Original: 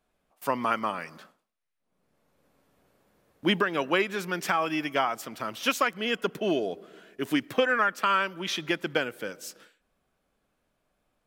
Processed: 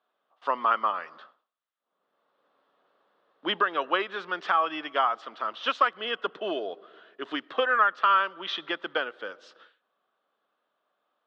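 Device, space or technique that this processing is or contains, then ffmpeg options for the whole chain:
phone earpiece: -af "highpass=110,highpass=470,equalizer=f=1.2k:t=q:w=4:g=7,equalizer=f=2.3k:t=q:w=4:g=-9,equalizer=f=3.5k:t=q:w=4:g=4,lowpass=f=3.7k:w=0.5412,lowpass=f=3.7k:w=1.3066"

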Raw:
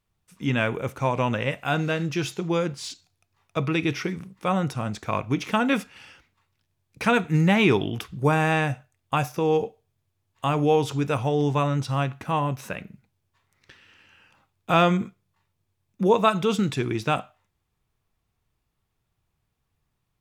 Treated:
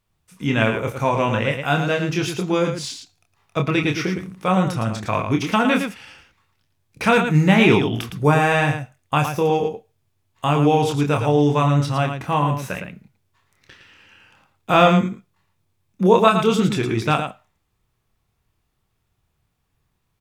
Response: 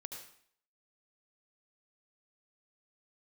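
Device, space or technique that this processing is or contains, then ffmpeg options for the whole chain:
slapback doubling: -filter_complex "[0:a]asplit=3[a][b][c];[b]adelay=27,volume=-5dB[d];[c]adelay=112,volume=-7dB[e];[a][d][e]amix=inputs=3:normalize=0,volume=3.5dB"

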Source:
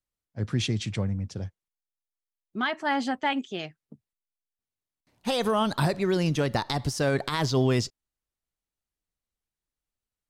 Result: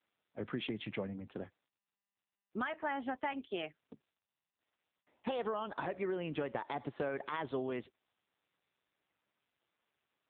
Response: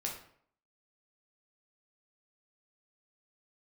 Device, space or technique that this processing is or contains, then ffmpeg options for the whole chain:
voicemail: -af "highpass=310,lowpass=2.7k,acompressor=threshold=-34dB:ratio=8,volume=1dB" -ar 8000 -c:a libopencore_amrnb -b:a 6700

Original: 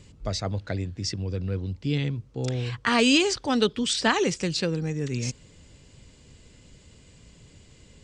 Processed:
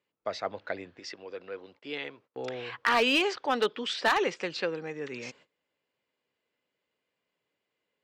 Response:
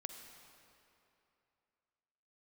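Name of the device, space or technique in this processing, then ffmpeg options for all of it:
walkie-talkie: -filter_complex "[0:a]highpass=550,lowpass=2.4k,asoftclip=type=hard:threshold=-20dB,agate=range=-22dB:threshold=-57dB:ratio=16:detection=peak,asettb=1/sr,asplit=3[a][b][c];[a]atrim=end=0.994[d];[b]atrim=start=0.99:end=2.3,asetpts=PTS-STARTPTS,afade=t=in:d=0.004:c=qsin,afade=t=out:st=1.306:d=0.004:c=qsin,bass=f=250:g=-13,treble=f=4k:g=0[e];[c]atrim=start=2.296[f];[d][e]acrossfade=d=0.004:c1=hsin:c2=qsin[g];[g][f]acrossfade=d=0.004:c1=qsin:c2=hsin,volume=2.5dB"

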